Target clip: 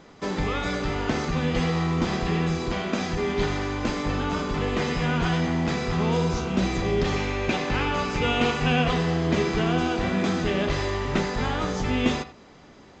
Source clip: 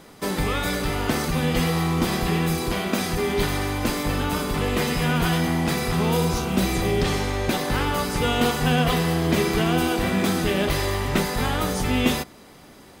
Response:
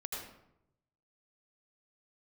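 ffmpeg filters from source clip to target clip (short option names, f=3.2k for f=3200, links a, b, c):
-filter_complex "[0:a]asettb=1/sr,asplit=3[a][b][c];[a]atrim=end=7.164[d];[b]atrim=start=7.16:end=8.87,asetpts=PTS-STARTPTS,afade=t=in:d=0.004:c=qsin,afade=t=out:st=1.706:d=0.004:c=qsin,equalizer=f=2.5k:w=3.7:g=8.5[e];[c]atrim=start=8.866[f];[d][e]acrossfade=d=0.004:c1=hsin:c2=qsin[g];[g][f]acrossfade=d=0.004:c1=qsin:c2=hsin,asplit=2[h][i];[1:a]atrim=start_sample=2205,atrim=end_sample=3969,lowpass=3.5k[j];[i][j]afir=irnorm=-1:irlink=0,volume=-4dB[k];[h][k]amix=inputs=2:normalize=0,aresample=16000,aresample=44100,volume=-5dB"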